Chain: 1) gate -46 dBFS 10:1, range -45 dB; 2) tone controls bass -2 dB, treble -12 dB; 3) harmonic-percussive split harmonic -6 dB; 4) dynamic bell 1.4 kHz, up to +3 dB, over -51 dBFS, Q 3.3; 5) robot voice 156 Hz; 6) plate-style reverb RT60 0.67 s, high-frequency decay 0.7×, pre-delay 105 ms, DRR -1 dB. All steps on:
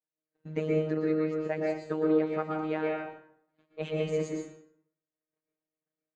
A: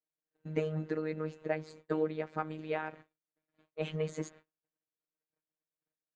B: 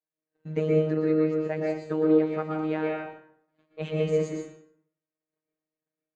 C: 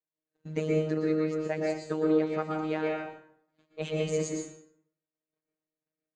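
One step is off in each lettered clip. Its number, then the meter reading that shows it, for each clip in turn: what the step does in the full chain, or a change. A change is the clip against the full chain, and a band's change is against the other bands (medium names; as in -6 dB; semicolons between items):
6, momentary loudness spread change -3 LU; 3, 125 Hz band +4.0 dB; 2, 4 kHz band +3.5 dB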